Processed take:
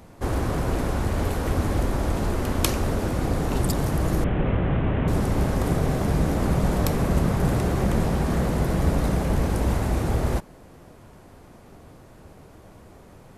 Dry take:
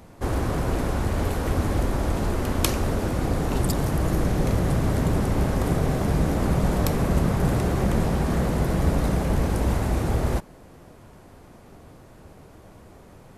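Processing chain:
0:04.24–0:05.08: variable-slope delta modulation 16 kbit/s

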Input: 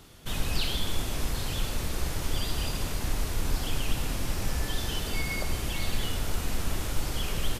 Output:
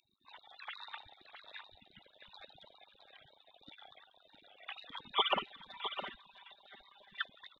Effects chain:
three sine waves on the formant tracks
gate on every frequency bin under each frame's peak −30 dB weak
0:05.10–0:07.26: comb filter 5.1 ms, depth 80%
single-tap delay 661 ms −9.5 dB
level +6.5 dB

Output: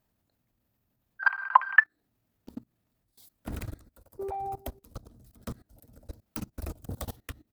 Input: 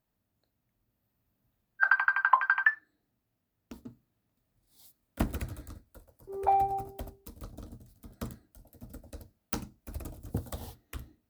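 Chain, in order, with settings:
output level in coarse steps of 21 dB
tempo change 1.5×
level +8 dB

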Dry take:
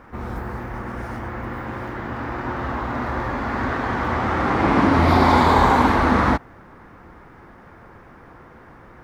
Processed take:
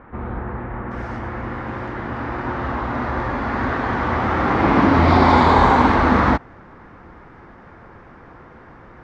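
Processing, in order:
Bessel low-pass filter 2,000 Hz, order 8, from 0:00.90 5,000 Hz
level +2 dB

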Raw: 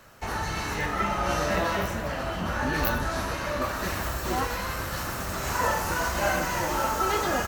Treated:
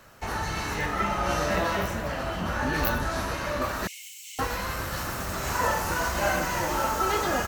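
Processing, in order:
0:03.87–0:04.39: Chebyshev high-pass with heavy ripple 2,100 Hz, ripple 9 dB

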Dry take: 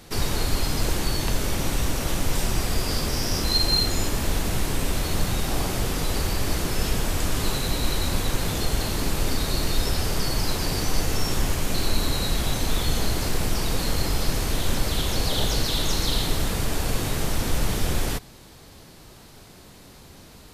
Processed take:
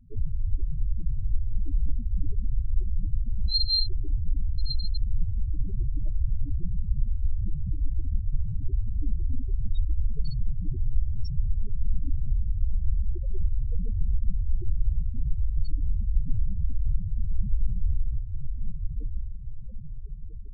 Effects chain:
feedback delay with all-pass diffusion 1,136 ms, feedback 48%, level −5 dB
spectral peaks only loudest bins 4

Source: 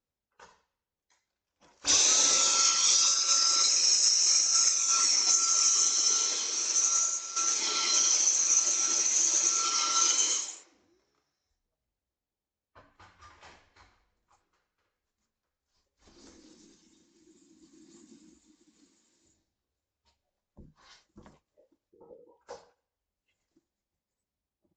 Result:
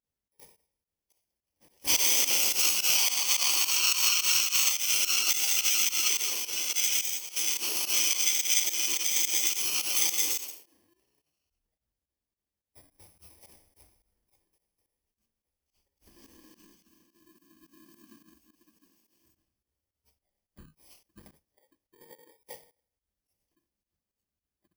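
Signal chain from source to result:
samples in bit-reversed order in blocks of 32 samples
fake sidechain pumping 107 BPM, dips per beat 2, −17 dB, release 85 ms

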